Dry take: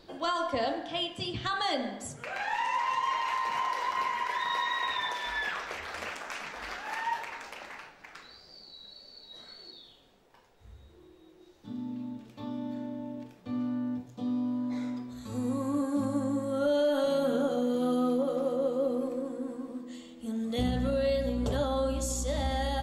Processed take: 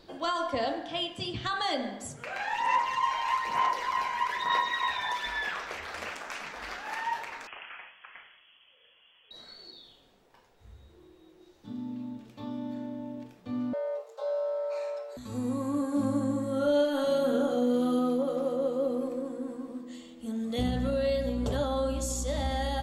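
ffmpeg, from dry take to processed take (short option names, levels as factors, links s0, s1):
-filter_complex "[0:a]asplit=3[s0][s1][s2];[s0]afade=t=out:st=2.55:d=0.02[s3];[s1]aphaser=in_gain=1:out_gain=1:delay=1.3:decay=0.46:speed=1.1:type=sinusoidal,afade=t=in:st=2.55:d=0.02,afade=t=out:st=5.28:d=0.02[s4];[s2]afade=t=in:st=5.28:d=0.02[s5];[s3][s4][s5]amix=inputs=3:normalize=0,asettb=1/sr,asplit=3[s6][s7][s8];[s6]atrim=end=7.474[s9];[s7]atrim=start=7.47:end=9.31,asetpts=PTS-STARTPTS,afade=t=in:d=0.004:c=qsin,afade=t=out:st=1.836:d=0.004:c=qsin,lowpass=f=2900:t=q:w=0.5098,lowpass=f=2900:t=q:w=0.6013,lowpass=f=2900:t=q:w=0.9,lowpass=f=2900:t=q:w=2.563,afreqshift=-3400[s10];[s8]atrim=start=9.306[s11];[s9][s10]acrossfade=d=0.004:c1=hsin:c2=qsin[s12];[s12][s11]acrossfade=d=0.004:c1=qsin:c2=hsin,asettb=1/sr,asplit=3[s13][s14][s15];[s13]atrim=end=13.734[s16];[s14]atrim=start=13.73:end=15.17,asetpts=PTS-STARTPTS,afade=t=in:d=0.004:c=qsin,afade=t=out:st=1.436:d=0.004:c=qsin,afreqshift=330[s17];[s15]atrim=start=15.166[s18];[s16][s17]acrossfade=d=0.004:c1=hsin:c2=qsin[s19];[s19][s18]acrossfade=d=0.004:c1=qsin:c2=hsin,asettb=1/sr,asplit=3[s20][s21][s22];[s20]atrim=end=15.874[s23];[s21]atrim=start=15.87:end=17.99,asetpts=PTS-STARTPTS,afade=t=in:d=0.004:c=qsin,afade=t=out:st=2.116:d=0.004:c=qsin,asplit=2[s24][s25];[s25]adelay=45,volume=0.447[s26];[s24][s26]amix=inputs=2:normalize=0,atrim=end_sample=93492[s27];[s22]atrim=start=17.986[s28];[s23][s27]acrossfade=d=0.004:c1=hsin:c2=qsin[s29];[s29][s28]acrossfade=d=0.004:c1=qsin:c2=hsin"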